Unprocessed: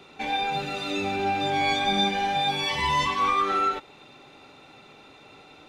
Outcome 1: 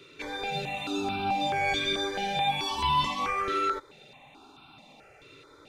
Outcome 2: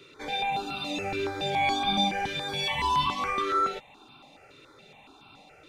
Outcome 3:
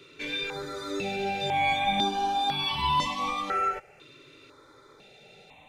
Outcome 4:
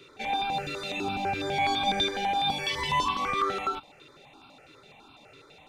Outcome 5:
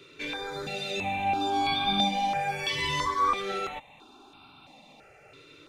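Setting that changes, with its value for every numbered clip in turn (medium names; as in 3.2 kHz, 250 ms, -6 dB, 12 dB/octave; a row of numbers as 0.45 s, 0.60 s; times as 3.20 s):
stepped phaser, rate: 4.6 Hz, 7.1 Hz, 2 Hz, 12 Hz, 3 Hz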